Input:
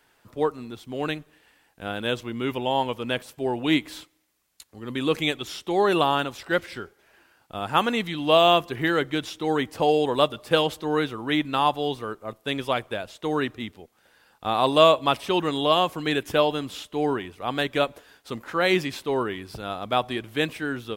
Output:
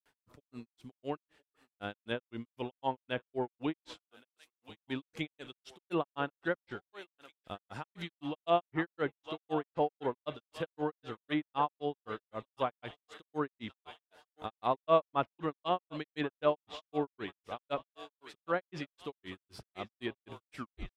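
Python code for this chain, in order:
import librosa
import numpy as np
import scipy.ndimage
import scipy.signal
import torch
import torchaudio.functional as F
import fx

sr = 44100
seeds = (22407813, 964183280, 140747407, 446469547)

y = fx.tape_stop_end(x, sr, length_s=0.41)
y = fx.echo_thinned(y, sr, ms=1081, feedback_pct=66, hz=630.0, wet_db=-14.5)
y = fx.granulator(y, sr, seeds[0], grain_ms=150.0, per_s=3.9, spray_ms=100.0, spread_st=0)
y = fx.env_lowpass_down(y, sr, base_hz=1700.0, full_db=-24.5)
y = y * 10.0 ** (-6.0 / 20.0)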